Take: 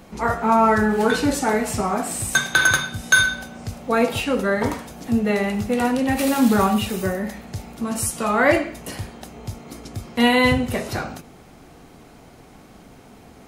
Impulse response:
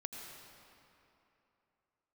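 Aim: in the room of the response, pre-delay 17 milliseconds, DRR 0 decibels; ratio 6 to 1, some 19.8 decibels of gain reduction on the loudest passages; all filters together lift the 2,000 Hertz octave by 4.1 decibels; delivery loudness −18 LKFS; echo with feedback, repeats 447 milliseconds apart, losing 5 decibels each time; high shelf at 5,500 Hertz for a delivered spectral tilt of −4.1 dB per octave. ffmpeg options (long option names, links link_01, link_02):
-filter_complex "[0:a]equalizer=frequency=2000:width_type=o:gain=5,highshelf=frequency=5500:gain=7.5,acompressor=threshold=-31dB:ratio=6,aecho=1:1:447|894|1341|1788|2235|2682|3129:0.562|0.315|0.176|0.0988|0.0553|0.031|0.0173,asplit=2[link_01][link_02];[1:a]atrim=start_sample=2205,adelay=17[link_03];[link_02][link_03]afir=irnorm=-1:irlink=0,volume=1.5dB[link_04];[link_01][link_04]amix=inputs=2:normalize=0,volume=11dB"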